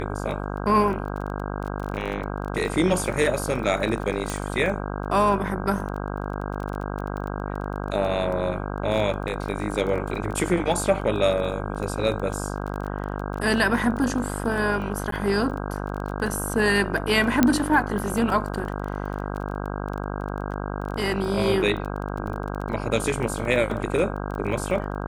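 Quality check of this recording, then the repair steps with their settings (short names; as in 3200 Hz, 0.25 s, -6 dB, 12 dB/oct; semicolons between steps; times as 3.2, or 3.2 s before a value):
buzz 50 Hz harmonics 32 -30 dBFS
crackle 20/s -30 dBFS
4.3 pop
15.11–15.12 gap 13 ms
17.43 pop -4 dBFS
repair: de-click; de-hum 50 Hz, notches 32; interpolate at 15.11, 13 ms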